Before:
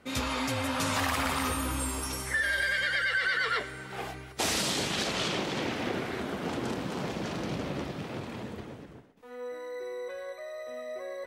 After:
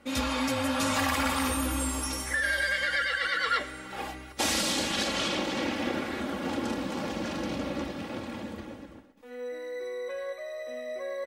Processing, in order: comb 3.6 ms, depth 65%

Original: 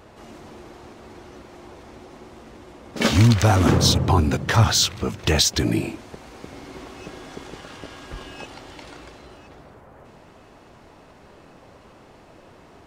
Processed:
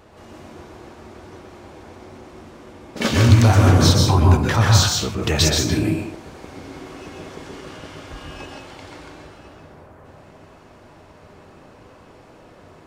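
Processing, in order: plate-style reverb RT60 0.61 s, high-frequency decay 0.6×, pre-delay 110 ms, DRR -0.5 dB; trim -1.5 dB

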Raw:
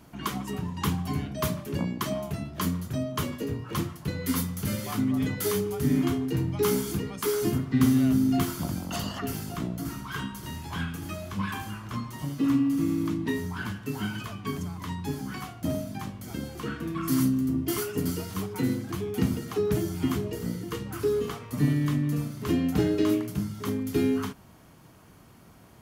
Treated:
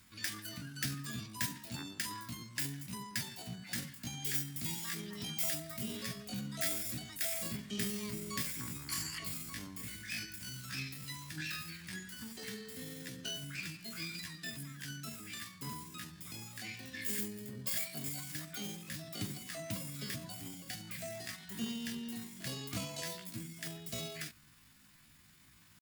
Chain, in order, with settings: amplifier tone stack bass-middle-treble 10-0-10; pitch shift +8 st; trim +1 dB

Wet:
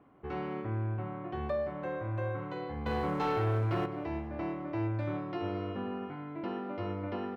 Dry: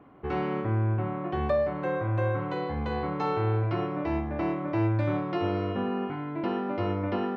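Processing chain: 2.86–3.86 s: waveshaping leveller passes 2; on a send: feedback delay 208 ms, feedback 52%, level -17 dB; on the sum: trim -7.5 dB

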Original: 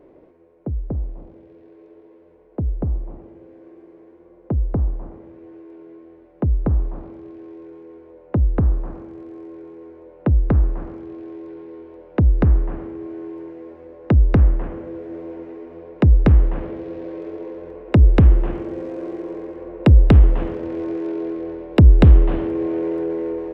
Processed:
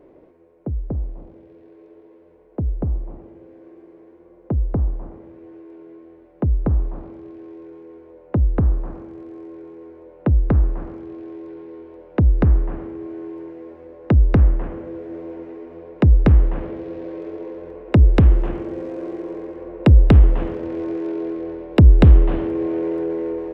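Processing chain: 18.03–18.49 s: tone controls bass -1 dB, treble +5 dB

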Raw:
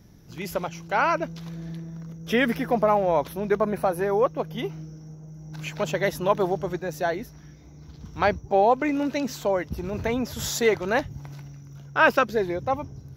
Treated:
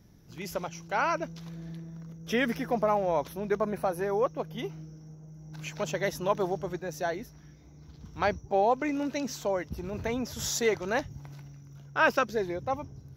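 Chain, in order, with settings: dynamic bell 5.9 kHz, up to +6 dB, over -54 dBFS, Q 2.5; trim -5.5 dB

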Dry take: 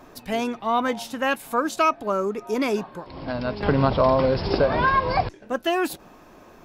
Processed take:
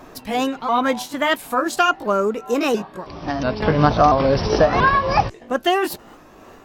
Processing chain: sawtooth pitch modulation +2.5 st, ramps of 686 ms; trim +5.5 dB

